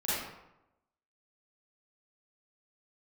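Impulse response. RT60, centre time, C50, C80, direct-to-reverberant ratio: 0.90 s, 89 ms, -4.0 dB, 1.0 dB, -11.5 dB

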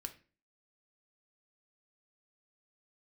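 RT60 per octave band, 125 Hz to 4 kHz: 0.45 s, 0.50 s, 0.40 s, 0.35 s, 0.35 s, 0.30 s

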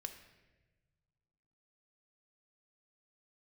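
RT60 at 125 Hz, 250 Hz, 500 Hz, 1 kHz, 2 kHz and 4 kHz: 2.4 s, 1.9 s, 1.4 s, 1.0 s, 1.2 s, 0.90 s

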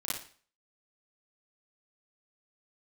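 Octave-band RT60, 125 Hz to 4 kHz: 0.40 s, 0.40 s, 0.45 s, 0.45 s, 0.45 s, 0.45 s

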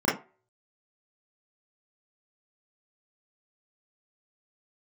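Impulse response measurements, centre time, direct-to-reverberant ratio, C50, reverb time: 38 ms, -8.5 dB, 7.5 dB, 0.35 s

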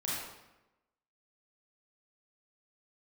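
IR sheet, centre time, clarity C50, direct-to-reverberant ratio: 84 ms, -2.5 dB, -7.5 dB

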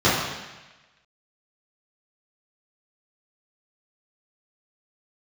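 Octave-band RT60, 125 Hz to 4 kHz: 1.1 s, 1.1 s, 1.1 s, 1.1 s, 1.3 s, 1.2 s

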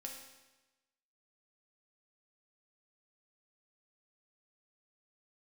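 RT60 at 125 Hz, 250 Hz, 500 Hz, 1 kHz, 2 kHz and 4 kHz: 1.1 s, 1.1 s, 1.1 s, 1.1 s, 1.1 s, 1.0 s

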